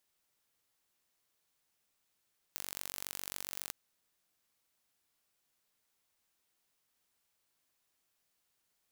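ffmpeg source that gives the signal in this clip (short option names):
-f lavfi -i "aevalsrc='0.266*eq(mod(n,932),0)*(0.5+0.5*eq(mod(n,1864),0))':d=1.15:s=44100"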